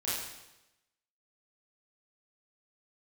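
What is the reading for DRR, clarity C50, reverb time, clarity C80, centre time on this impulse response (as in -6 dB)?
-10.0 dB, -1.0 dB, 0.95 s, 2.5 dB, 77 ms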